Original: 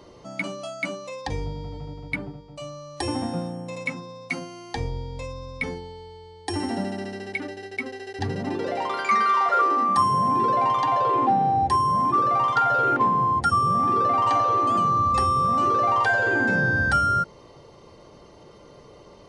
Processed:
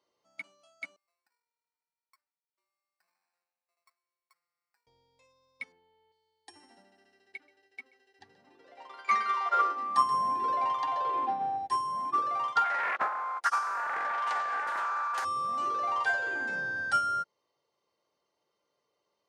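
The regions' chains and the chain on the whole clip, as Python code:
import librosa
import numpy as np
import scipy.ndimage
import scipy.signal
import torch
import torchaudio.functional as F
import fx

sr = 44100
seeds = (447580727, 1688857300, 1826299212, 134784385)

y = fx.chain(x, sr, fx.ladder_bandpass(hz=2400.0, resonance_pct=20),
    fx.high_shelf(hz=3200.0, db=-8.0),
    fx.sample_hold(seeds[0], rate_hz=3300.0, jitter_pct=0), at=(0.96, 4.87))
y = fx.chain(y, sr, fx.lowpass(hz=3000.0, slope=24),
    fx.env_flatten(amount_pct=50), at=(5.72, 6.12))
y = fx.chain(y, sr, fx.high_shelf(hz=6500.0, db=-7.0),
    fx.echo_single(ms=130, db=-11.5), at=(6.82, 11.58))
y = fx.chain(y, sr, fx.highpass(hz=550.0, slope=12),
    fx.doppler_dist(depth_ms=0.48), at=(12.64, 15.25))
y = fx.highpass(y, sr, hz=1100.0, slope=6)
y = fx.upward_expand(y, sr, threshold_db=-36.0, expansion=2.5)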